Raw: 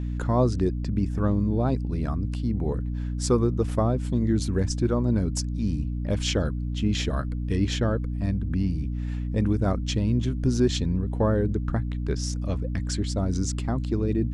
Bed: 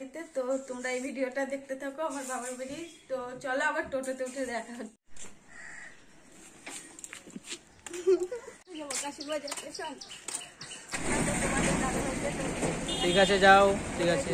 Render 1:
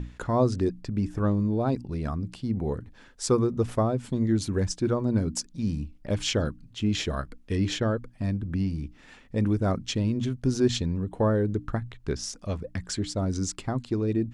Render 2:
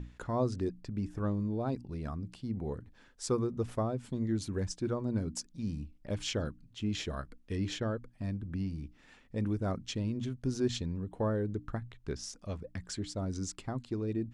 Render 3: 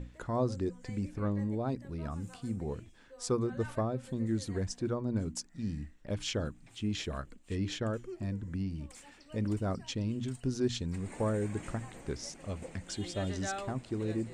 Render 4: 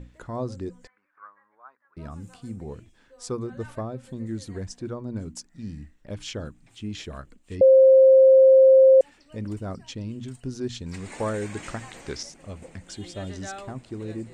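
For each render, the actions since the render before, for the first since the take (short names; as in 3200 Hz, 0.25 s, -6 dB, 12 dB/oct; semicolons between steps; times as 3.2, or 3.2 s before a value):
notches 60/120/180/240/300 Hz
gain -8 dB
add bed -19.5 dB
0.87–1.97 Butterworth band-pass 1300 Hz, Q 2.2; 7.61–9.01 bleep 529 Hz -10 dBFS; 10.86–12.23 EQ curve 150 Hz 0 dB, 5300 Hz +13 dB, 9400 Hz +5 dB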